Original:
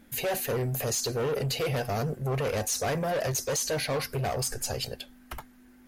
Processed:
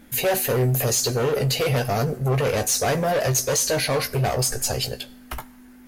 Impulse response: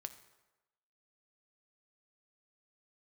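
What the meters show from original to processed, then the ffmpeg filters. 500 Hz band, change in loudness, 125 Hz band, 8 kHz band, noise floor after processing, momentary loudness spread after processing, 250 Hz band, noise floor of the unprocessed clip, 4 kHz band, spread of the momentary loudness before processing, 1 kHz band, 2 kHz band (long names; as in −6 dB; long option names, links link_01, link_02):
+7.0 dB, +7.5 dB, +8.0 dB, +8.0 dB, −47 dBFS, 8 LU, +7.0 dB, −55 dBFS, +7.5 dB, 8 LU, +7.0 dB, +7.0 dB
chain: -filter_complex "[0:a]asplit=2[link_01][link_02];[1:a]atrim=start_sample=2205,highshelf=frequency=4900:gain=9.5,adelay=16[link_03];[link_02][link_03]afir=irnorm=-1:irlink=0,volume=-6.5dB[link_04];[link_01][link_04]amix=inputs=2:normalize=0,volume=6.5dB"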